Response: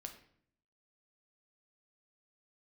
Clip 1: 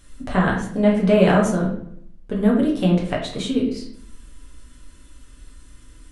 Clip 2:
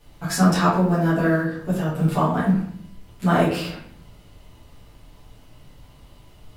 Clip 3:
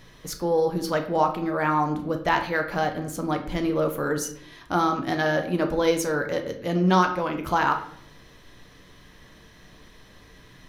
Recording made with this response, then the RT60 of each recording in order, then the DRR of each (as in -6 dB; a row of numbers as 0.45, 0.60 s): 3; 0.60, 0.60, 0.60 s; -3.0, -10.0, 4.0 dB